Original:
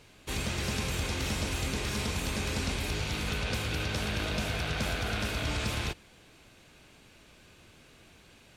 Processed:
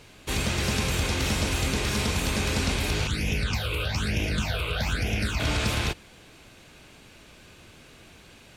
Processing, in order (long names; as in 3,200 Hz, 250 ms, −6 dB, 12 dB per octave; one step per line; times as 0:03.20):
0:03.07–0:05.40: all-pass phaser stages 8, 1.1 Hz, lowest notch 220–1,300 Hz
level +6 dB